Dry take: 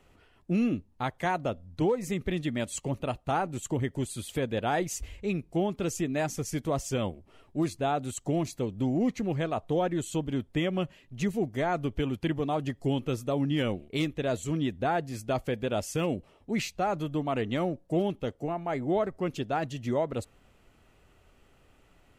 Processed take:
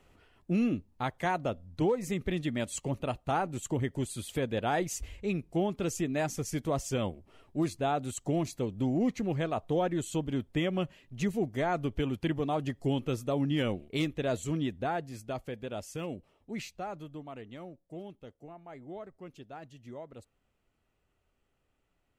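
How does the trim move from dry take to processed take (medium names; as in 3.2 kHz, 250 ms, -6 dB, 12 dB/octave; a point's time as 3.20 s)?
14.47 s -1.5 dB
15.48 s -8.5 dB
16.70 s -8.5 dB
17.47 s -16 dB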